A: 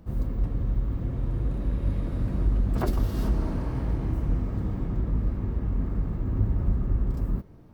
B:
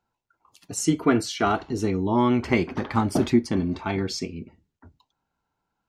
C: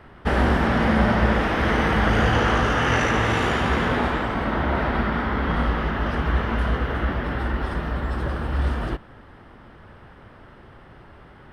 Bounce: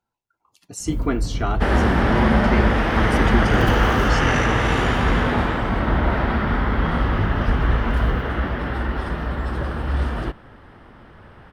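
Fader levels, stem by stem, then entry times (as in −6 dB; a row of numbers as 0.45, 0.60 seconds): +2.5, −3.5, +1.0 decibels; 0.80, 0.00, 1.35 seconds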